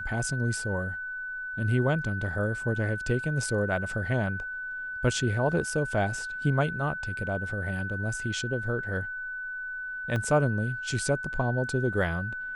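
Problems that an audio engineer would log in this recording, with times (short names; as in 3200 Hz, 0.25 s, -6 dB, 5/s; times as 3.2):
tone 1500 Hz -33 dBFS
10.16 gap 2.4 ms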